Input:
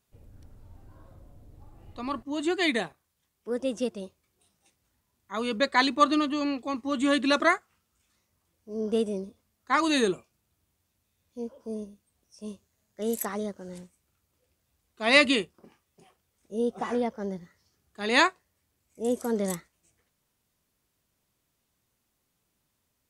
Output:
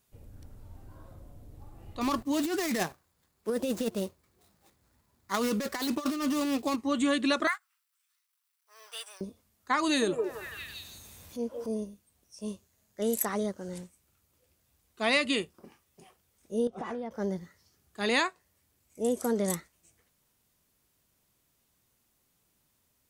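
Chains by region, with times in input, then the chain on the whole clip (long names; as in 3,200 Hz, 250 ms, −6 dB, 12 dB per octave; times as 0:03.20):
0:02.01–0:06.76: running median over 15 samples + high-shelf EQ 2,900 Hz +11 dB + compressor whose output falls as the input rises −31 dBFS
0:07.47–0:09.21: mu-law and A-law mismatch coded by A + high-pass filter 1,100 Hz 24 dB per octave + notch filter 6,700 Hz, Q 9.6
0:09.85–0:11.69: upward compression, threshold −37 dBFS + echo through a band-pass that steps 166 ms, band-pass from 550 Hz, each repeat 0.7 octaves, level −3.5 dB
0:16.67–0:17.11: low-pass filter 2,700 Hz 6 dB per octave + downward compressor 10 to 1, threshold −34 dBFS
whole clip: high-shelf EQ 8,100 Hz +5 dB; downward compressor 4 to 1, threshold −26 dBFS; level +2 dB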